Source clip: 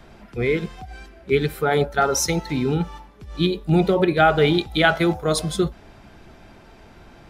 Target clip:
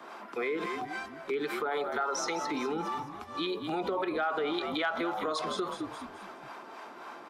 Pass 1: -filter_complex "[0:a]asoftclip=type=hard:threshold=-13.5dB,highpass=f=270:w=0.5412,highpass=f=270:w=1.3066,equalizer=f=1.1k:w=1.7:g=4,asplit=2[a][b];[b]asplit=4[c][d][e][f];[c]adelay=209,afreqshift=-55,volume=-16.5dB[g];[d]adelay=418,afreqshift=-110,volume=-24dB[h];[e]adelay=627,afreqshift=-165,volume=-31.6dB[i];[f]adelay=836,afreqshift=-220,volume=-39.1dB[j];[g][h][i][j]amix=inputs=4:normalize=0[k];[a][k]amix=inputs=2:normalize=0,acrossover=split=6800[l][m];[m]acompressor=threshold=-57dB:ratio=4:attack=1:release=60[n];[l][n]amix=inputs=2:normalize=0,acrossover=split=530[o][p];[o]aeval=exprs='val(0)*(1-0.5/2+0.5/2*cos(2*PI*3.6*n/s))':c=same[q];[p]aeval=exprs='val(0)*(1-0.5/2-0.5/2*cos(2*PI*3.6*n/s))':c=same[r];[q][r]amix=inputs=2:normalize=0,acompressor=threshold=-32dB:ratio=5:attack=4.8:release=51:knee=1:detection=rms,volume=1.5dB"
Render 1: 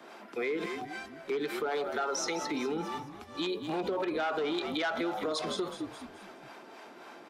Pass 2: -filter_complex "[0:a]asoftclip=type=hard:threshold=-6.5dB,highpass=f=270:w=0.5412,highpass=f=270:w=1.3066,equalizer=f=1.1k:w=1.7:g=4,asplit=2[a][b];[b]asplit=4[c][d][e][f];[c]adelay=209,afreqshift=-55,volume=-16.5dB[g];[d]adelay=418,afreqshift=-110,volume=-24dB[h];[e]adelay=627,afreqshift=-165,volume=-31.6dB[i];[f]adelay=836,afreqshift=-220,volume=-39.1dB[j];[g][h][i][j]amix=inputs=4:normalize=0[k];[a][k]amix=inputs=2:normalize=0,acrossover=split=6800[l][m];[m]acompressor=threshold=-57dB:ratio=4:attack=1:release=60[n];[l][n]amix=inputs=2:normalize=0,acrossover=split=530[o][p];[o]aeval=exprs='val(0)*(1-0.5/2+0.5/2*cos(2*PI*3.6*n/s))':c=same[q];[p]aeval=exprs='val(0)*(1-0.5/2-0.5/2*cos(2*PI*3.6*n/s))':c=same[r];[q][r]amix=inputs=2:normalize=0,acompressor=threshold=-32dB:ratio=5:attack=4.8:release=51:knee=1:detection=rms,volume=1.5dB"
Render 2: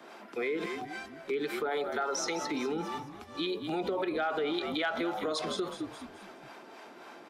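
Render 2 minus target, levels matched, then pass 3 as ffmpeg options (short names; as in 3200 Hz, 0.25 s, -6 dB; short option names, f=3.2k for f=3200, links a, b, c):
1000 Hz band -2.5 dB
-filter_complex "[0:a]asoftclip=type=hard:threshold=-6.5dB,highpass=f=270:w=0.5412,highpass=f=270:w=1.3066,equalizer=f=1.1k:w=1.7:g=13,asplit=2[a][b];[b]asplit=4[c][d][e][f];[c]adelay=209,afreqshift=-55,volume=-16.5dB[g];[d]adelay=418,afreqshift=-110,volume=-24dB[h];[e]adelay=627,afreqshift=-165,volume=-31.6dB[i];[f]adelay=836,afreqshift=-220,volume=-39.1dB[j];[g][h][i][j]amix=inputs=4:normalize=0[k];[a][k]amix=inputs=2:normalize=0,acrossover=split=6800[l][m];[m]acompressor=threshold=-57dB:ratio=4:attack=1:release=60[n];[l][n]amix=inputs=2:normalize=0,acrossover=split=530[o][p];[o]aeval=exprs='val(0)*(1-0.5/2+0.5/2*cos(2*PI*3.6*n/s))':c=same[q];[p]aeval=exprs='val(0)*(1-0.5/2-0.5/2*cos(2*PI*3.6*n/s))':c=same[r];[q][r]amix=inputs=2:normalize=0,acompressor=threshold=-32dB:ratio=5:attack=4.8:release=51:knee=1:detection=rms,volume=1.5dB"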